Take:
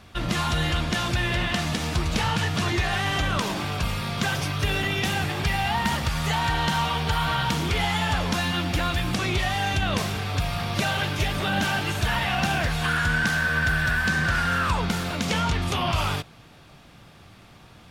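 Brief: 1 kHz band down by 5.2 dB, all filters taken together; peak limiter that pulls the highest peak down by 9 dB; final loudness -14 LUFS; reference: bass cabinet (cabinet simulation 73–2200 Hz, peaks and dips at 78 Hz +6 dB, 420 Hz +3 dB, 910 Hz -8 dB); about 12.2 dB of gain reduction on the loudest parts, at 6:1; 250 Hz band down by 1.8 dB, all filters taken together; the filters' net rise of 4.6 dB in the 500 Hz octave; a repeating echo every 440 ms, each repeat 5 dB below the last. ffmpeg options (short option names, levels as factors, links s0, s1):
-af "equalizer=f=250:t=o:g=-5.5,equalizer=f=500:t=o:g=8.5,equalizer=f=1000:t=o:g=-6,acompressor=threshold=0.02:ratio=6,alimiter=level_in=1.88:limit=0.0631:level=0:latency=1,volume=0.531,highpass=f=73:w=0.5412,highpass=f=73:w=1.3066,equalizer=f=78:t=q:w=4:g=6,equalizer=f=420:t=q:w=4:g=3,equalizer=f=910:t=q:w=4:g=-8,lowpass=f=2200:w=0.5412,lowpass=f=2200:w=1.3066,aecho=1:1:440|880|1320|1760|2200|2640|3080:0.562|0.315|0.176|0.0988|0.0553|0.031|0.0173,volume=16.8"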